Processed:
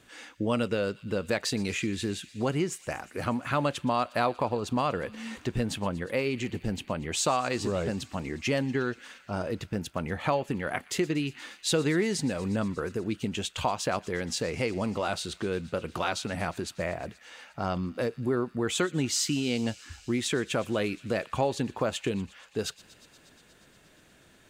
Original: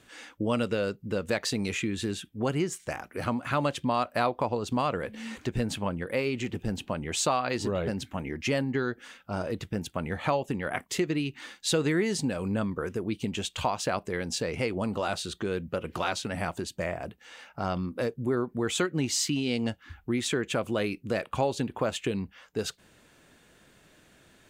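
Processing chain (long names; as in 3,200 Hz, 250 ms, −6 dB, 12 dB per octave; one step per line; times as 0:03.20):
delay with a high-pass on its return 119 ms, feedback 82%, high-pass 2,000 Hz, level −19 dB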